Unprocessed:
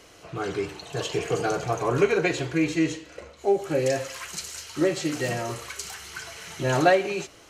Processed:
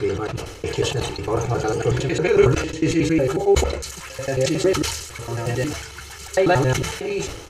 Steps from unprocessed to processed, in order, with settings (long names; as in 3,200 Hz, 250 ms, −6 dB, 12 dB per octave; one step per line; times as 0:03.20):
slices reordered back to front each 91 ms, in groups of 7
low-shelf EQ 210 Hz +11.5 dB
comb filter 2.3 ms, depth 43%
level that may fall only so fast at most 62 dB per second